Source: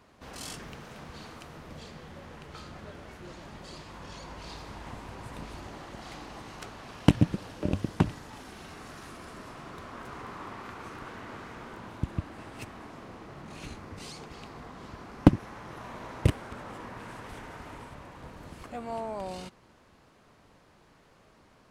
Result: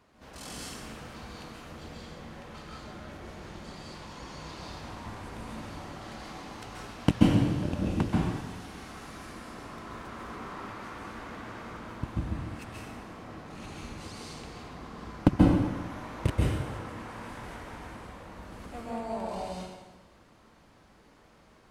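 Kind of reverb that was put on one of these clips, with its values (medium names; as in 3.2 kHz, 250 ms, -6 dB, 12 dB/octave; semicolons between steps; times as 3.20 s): plate-style reverb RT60 1.2 s, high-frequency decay 0.9×, pre-delay 120 ms, DRR -4 dB; trim -4.5 dB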